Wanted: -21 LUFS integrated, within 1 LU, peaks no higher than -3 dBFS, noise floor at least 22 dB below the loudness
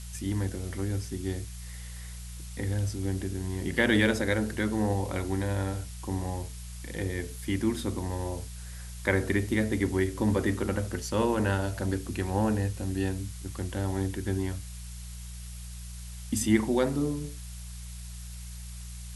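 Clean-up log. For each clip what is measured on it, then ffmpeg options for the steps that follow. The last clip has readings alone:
hum 60 Hz; harmonics up to 180 Hz; hum level -39 dBFS; noise floor -41 dBFS; noise floor target -52 dBFS; loudness -30.0 LUFS; peak -9.0 dBFS; loudness target -21.0 LUFS
-> -af "bandreject=f=60:t=h:w=4,bandreject=f=120:t=h:w=4,bandreject=f=180:t=h:w=4"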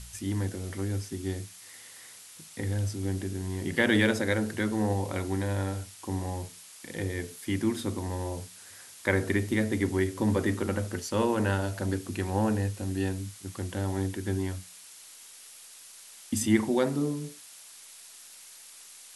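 hum none; noise floor -50 dBFS; noise floor target -52 dBFS
-> -af "afftdn=nr=6:nf=-50"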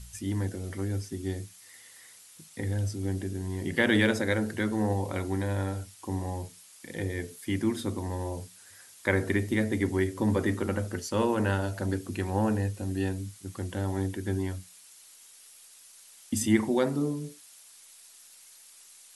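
noise floor -54 dBFS; loudness -30.0 LUFS; peak -9.0 dBFS; loudness target -21.0 LUFS
-> -af "volume=9dB,alimiter=limit=-3dB:level=0:latency=1"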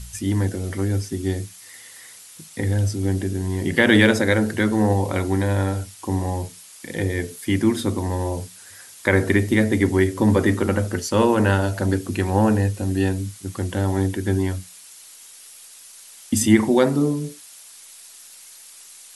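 loudness -21.0 LUFS; peak -3.0 dBFS; noise floor -45 dBFS

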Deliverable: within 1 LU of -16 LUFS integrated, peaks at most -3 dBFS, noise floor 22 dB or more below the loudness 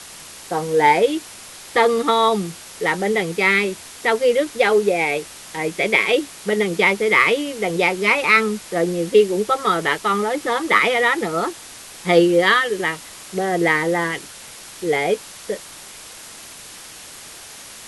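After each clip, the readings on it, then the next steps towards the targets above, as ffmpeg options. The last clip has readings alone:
noise floor -39 dBFS; noise floor target -41 dBFS; loudness -18.5 LUFS; peak -2.0 dBFS; loudness target -16.0 LUFS
-> -af "afftdn=nr=6:nf=-39"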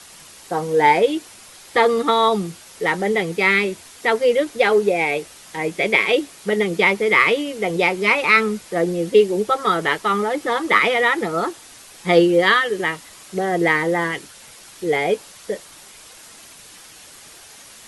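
noise floor -44 dBFS; loudness -18.5 LUFS; peak -2.0 dBFS; loudness target -16.0 LUFS
-> -af "volume=2.5dB,alimiter=limit=-3dB:level=0:latency=1"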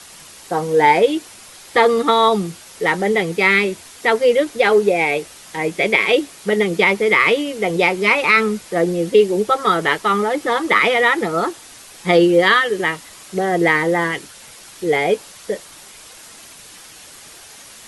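loudness -16.5 LUFS; peak -3.0 dBFS; noise floor -41 dBFS

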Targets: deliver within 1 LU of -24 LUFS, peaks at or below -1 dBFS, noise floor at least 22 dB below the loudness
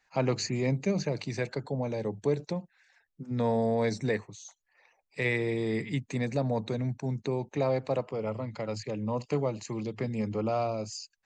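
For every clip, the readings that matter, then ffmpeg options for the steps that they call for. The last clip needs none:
loudness -31.5 LUFS; peak -16.0 dBFS; loudness target -24.0 LUFS
-> -af "volume=7.5dB"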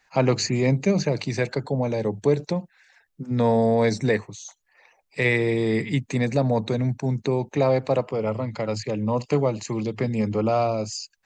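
loudness -24.0 LUFS; peak -8.5 dBFS; noise floor -69 dBFS

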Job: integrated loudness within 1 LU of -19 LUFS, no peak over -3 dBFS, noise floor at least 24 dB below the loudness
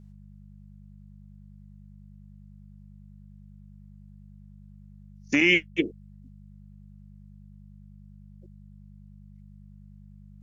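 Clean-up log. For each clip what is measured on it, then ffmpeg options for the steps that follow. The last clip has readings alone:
hum 50 Hz; harmonics up to 200 Hz; hum level -46 dBFS; loudness -23.0 LUFS; peak -8.0 dBFS; loudness target -19.0 LUFS
-> -af "bandreject=f=50:t=h:w=4,bandreject=f=100:t=h:w=4,bandreject=f=150:t=h:w=4,bandreject=f=200:t=h:w=4"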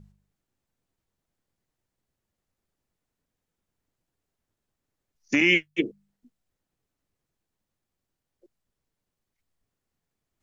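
hum none; loudness -23.0 LUFS; peak -7.5 dBFS; loudness target -19.0 LUFS
-> -af "volume=4dB"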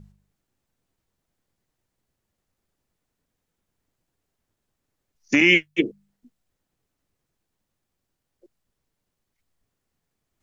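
loudness -19.0 LUFS; peak -3.5 dBFS; noise floor -81 dBFS

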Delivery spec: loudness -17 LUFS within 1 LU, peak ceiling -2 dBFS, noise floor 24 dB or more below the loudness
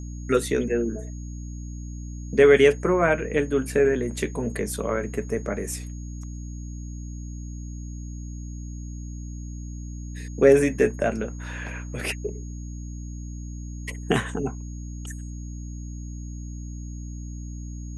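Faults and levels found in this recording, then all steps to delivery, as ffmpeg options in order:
hum 60 Hz; harmonics up to 300 Hz; hum level -32 dBFS; steady tone 6600 Hz; tone level -49 dBFS; loudness -24.0 LUFS; peak -4.5 dBFS; loudness target -17.0 LUFS
-> -af "bandreject=f=60:t=h:w=6,bandreject=f=120:t=h:w=6,bandreject=f=180:t=h:w=6,bandreject=f=240:t=h:w=6,bandreject=f=300:t=h:w=6"
-af "bandreject=f=6.6k:w=30"
-af "volume=7dB,alimiter=limit=-2dB:level=0:latency=1"

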